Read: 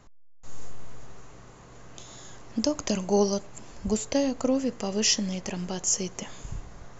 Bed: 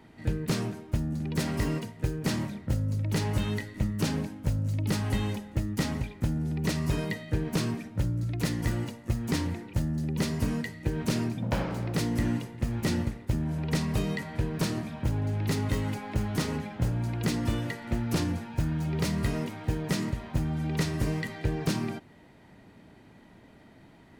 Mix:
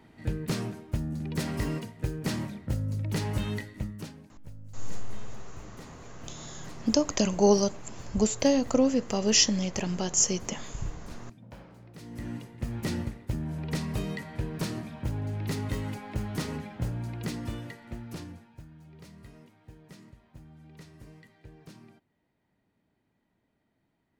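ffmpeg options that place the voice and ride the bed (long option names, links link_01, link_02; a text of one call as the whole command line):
ffmpeg -i stem1.wav -i stem2.wav -filter_complex "[0:a]adelay=4300,volume=2dB[link_01];[1:a]volume=13.5dB,afade=type=out:start_time=3.61:duration=0.53:silence=0.141254,afade=type=in:start_time=11.99:duration=0.7:silence=0.16788,afade=type=out:start_time=16.77:duration=1.91:silence=0.125893[link_02];[link_01][link_02]amix=inputs=2:normalize=0" out.wav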